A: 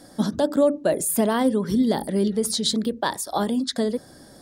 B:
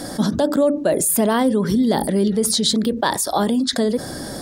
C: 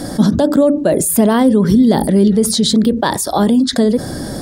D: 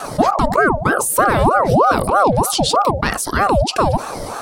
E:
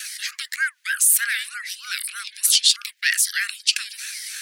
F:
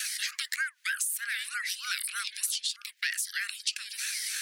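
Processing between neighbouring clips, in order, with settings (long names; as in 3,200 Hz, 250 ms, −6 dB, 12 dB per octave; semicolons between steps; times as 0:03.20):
envelope flattener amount 50%; level +1 dB
low-shelf EQ 350 Hz +8 dB; level +2 dB
pitch vibrato 3.4 Hz 48 cents; ring modulator whose carrier an LFO sweeps 660 Hz, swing 55%, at 3.2 Hz
Butterworth high-pass 1,700 Hz 72 dB per octave; level +4.5 dB
downward compressor 12 to 1, threshold −28 dBFS, peak gain reduction 18 dB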